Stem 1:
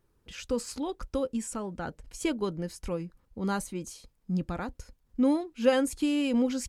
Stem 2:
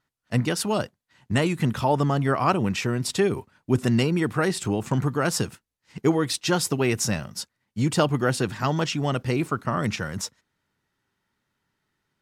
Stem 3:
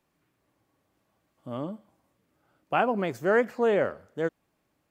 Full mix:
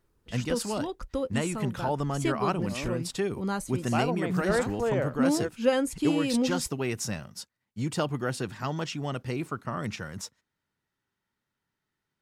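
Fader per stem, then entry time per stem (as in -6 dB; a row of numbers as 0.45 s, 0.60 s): -0.5 dB, -7.5 dB, -4.5 dB; 0.00 s, 0.00 s, 1.20 s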